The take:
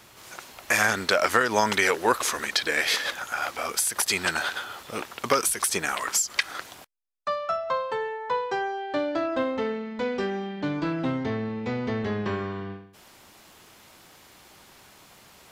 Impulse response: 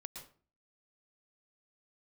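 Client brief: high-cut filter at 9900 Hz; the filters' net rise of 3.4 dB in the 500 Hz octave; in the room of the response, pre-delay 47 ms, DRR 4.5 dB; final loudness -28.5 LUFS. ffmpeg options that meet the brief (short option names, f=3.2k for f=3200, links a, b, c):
-filter_complex "[0:a]lowpass=9.9k,equalizer=f=500:t=o:g=4,asplit=2[a][b];[1:a]atrim=start_sample=2205,adelay=47[c];[b][c]afir=irnorm=-1:irlink=0,volume=-0.5dB[d];[a][d]amix=inputs=2:normalize=0,volume=-4.5dB"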